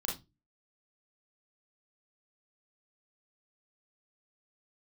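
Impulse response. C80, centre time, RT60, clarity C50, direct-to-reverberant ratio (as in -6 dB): 17.5 dB, 31 ms, 0.25 s, 6.5 dB, -3.0 dB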